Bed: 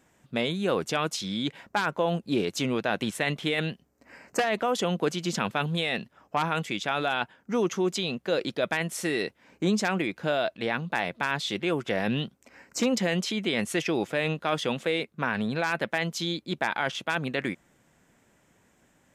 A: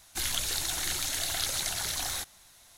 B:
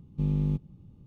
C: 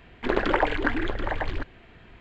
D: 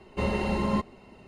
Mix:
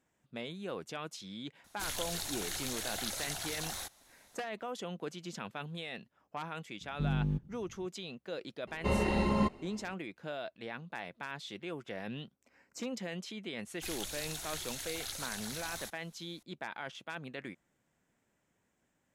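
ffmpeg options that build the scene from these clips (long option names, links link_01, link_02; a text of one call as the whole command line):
ffmpeg -i bed.wav -i cue0.wav -i cue1.wav -i cue2.wav -i cue3.wav -filter_complex "[1:a]asplit=2[link_01][link_02];[0:a]volume=-14dB[link_03];[link_01]equalizer=frequency=620:width=0.66:gain=4.5,atrim=end=2.77,asetpts=PTS-STARTPTS,volume=-8dB,afade=type=in:duration=0.004:curve=hsin,afade=type=out:start_time=2.766:duration=0.004:curve=hsin,adelay=1640[link_04];[2:a]atrim=end=1.06,asetpts=PTS-STARTPTS,volume=-5dB,afade=type=in:duration=0.004:curve=hsin,afade=type=out:start_time=1.056:duration=0.004:curve=hsin,adelay=6810[link_05];[4:a]atrim=end=1.27,asetpts=PTS-STARTPTS,volume=-2.5dB,afade=type=in:duration=0.004:curve=hsin,afade=type=out:start_time=1.266:duration=0.004:curve=hsin,adelay=8670[link_06];[link_02]atrim=end=2.77,asetpts=PTS-STARTPTS,volume=-10.5dB,afade=type=in:duration=0.004:curve=hsin,afade=type=out:start_time=2.766:duration=0.004:curve=hsin,adelay=13660[link_07];[link_03][link_04][link_05][link_06][link_07]amix=inputs=5:normalize=0" out.wav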